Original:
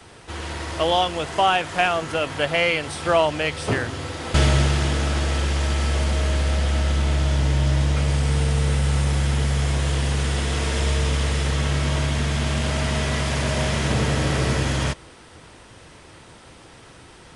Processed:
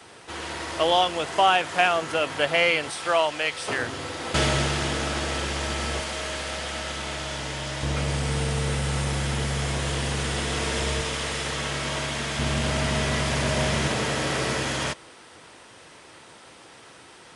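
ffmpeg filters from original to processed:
ffmpeg -i in.wav -af "asetnsamples=nb_out_samples=441:pad=0,asendcmd='2.9 highpass f 820;3.79 highpass f 260;6 highpass f 710;7.83 highpass f 190;11.01 highpass f 450;12.39 highpass f 110;13.88 highpass f 380',highpass=frequency=280:poles=1" out.wav

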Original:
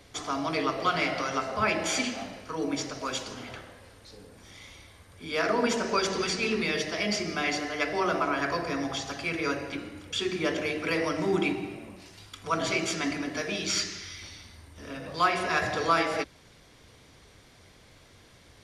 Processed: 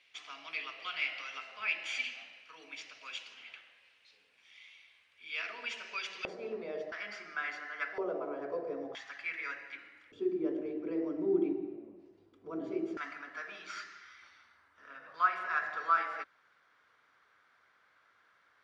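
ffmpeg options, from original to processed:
ffmpeg -i in.wav -af "asetnsamples=nb_out_samples=441:pad=0,asendcmd='6.25 bandpass f 580;6.92 bandpass f 1500;7.98 bandpass f 470;8.95 bandpass f 1900;10.12 bandpass f 350;12.97 bandpass f 1400',bandpass=frequency=2600:width_type=q:width=3.9:csg=0" out.wav

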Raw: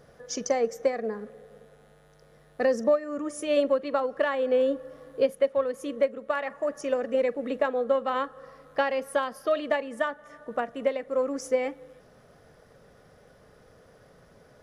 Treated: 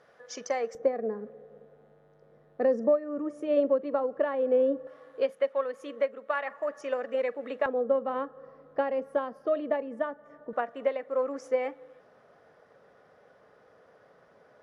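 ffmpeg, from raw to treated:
ffmpeg -i in.wav -af "asetnsamples=nb_out_samples=441:pad=0,asendcmd='0.75 bandpass f 370;4.87 bandpass f 1300;7.66 bandpass f 340;10.53 bandpass f 950',bandpass=frequency=1500:width_type=q:width=0.59:csg=0" out.wav

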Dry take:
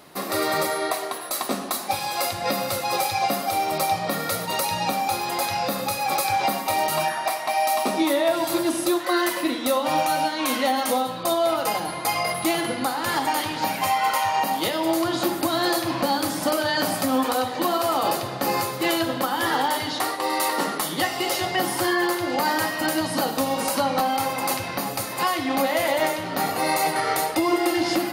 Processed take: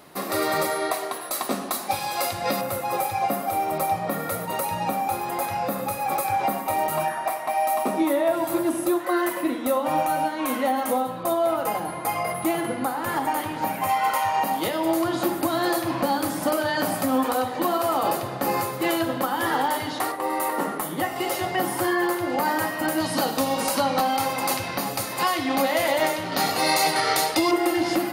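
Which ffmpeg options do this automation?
ffmpeg -i in.wav -af "asetnsamples=nb_out_samples=441:pad=0,asendcmd='2.61 equalizer g -13.5;13.89 equalizer g -7;20.12 equalizer g -15;21.16 equalizer g -8.5;23 equalizer g 0.5;26.32 equalizer g 7;27.51 equalizer g -4.5',equalizer=frequency=4600:width_type=o:width=1.6:gain=-3" out.wav

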